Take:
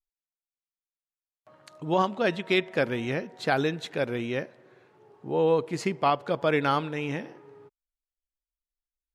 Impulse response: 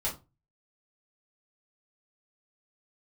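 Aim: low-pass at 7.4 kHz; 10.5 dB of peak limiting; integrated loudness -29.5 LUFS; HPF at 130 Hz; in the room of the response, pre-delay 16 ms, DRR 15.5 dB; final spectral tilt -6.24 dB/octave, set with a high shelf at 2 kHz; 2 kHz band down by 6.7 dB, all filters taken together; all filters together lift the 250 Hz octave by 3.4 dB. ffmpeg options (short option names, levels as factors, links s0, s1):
-filter_complex "[0:a]highpass=130,lowpass=7400,equalizer=f=250:t=o:g=5.5,highshelf=f=2000:g=-5.5,equalizer=f=2000:t=o:g=-5.5,alimiter=limit=0.0841:level=0:latency=1,asplit=2[s0][s1];[1:a]atrim=start_sample=2205,adelay=16[s2];[s1][s2]afir=irnorm=-1:irlink=0,volume=0.0944[s3];[s0][s3]amix=inputs=2:normalize=0,volume=1.33"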